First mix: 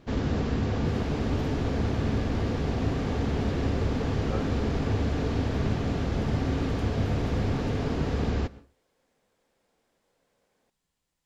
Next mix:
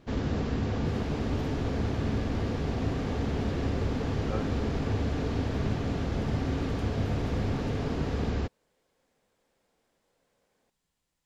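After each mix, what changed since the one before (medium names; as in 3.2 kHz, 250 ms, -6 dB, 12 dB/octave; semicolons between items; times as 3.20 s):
reverb: off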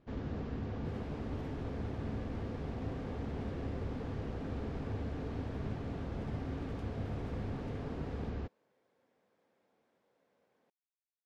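speech: muted; first sound -9.5 dB; master: add low-pass 2.1 kHz 6 dB/octave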